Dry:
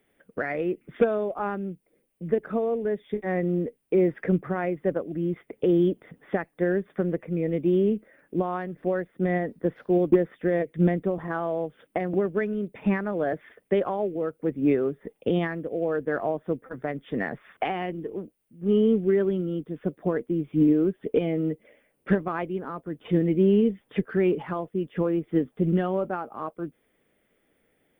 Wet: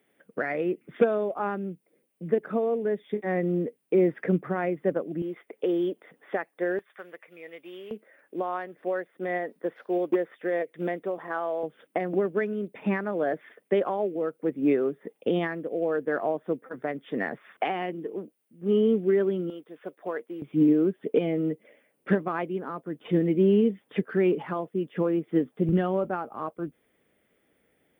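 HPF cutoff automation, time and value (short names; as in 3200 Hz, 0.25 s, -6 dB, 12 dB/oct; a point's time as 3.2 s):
150 Hz
from 5.22 s 410 Hz
from 6.79 s 1200 Hz
from 7.91 s 450 Hz
from 11.63 s 210 Hz
from 19.5 s 590 Hz
from 20.42 s 160 Hz
from 25.69 s 47 Hz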